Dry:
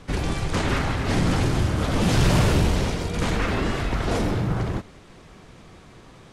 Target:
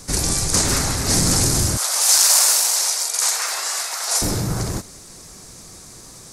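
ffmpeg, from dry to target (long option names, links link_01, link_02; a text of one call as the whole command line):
ffmpeg -i in.wav -filter_complex "[0:a]asettb=1/sr,asplit=3[link_01][link_02][link_03];[link_01]atrim=end=1.774[link_04];[link_02]atrim=start=1.77:end=4.22,asetpts=PTS-STARTPTS,afade=type=in:duration=0.004:curve=qsin,afade=type=out:start_time=2.446:duration=0.004:curve=qsin,highpass=frequency=720:width=0.5412,highpass=frequency=720:width=1.3066[link_05];[link_03]atrim=start=4.216[link_06];[link_04][link_05]acrossfade=duration=0.004:curve1=hsin:curve2=qsin[link_07];[link_07][link_06]acrossfade=duration=0.004:curve1=qsin:curve2=hsin,acontrast=84,aexciter=amount=14.3:drive=1.8:freq=4600,volume=-6dB" out.wav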